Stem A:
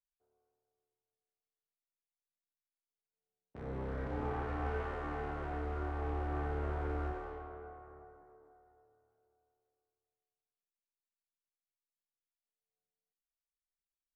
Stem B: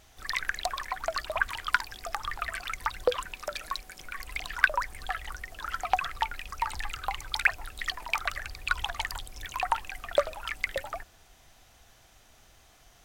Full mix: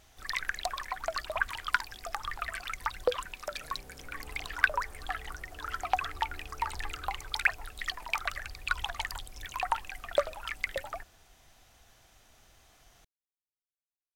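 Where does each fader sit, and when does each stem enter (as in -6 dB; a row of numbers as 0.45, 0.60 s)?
-14.5, -2.5 dB; 0.00, 0.00 s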